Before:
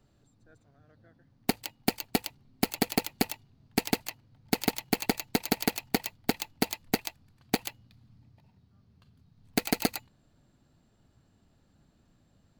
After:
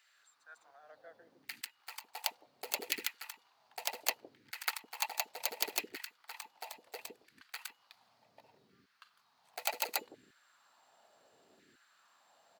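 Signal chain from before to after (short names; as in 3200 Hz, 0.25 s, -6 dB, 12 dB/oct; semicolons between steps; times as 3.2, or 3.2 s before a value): LFO high-pass saw down 0.69 Hz 350–2000 Hz; auto swell 0.165 s; bands offset in time highs, lows 0.16 s, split 400 Hz; gain +5.5 dB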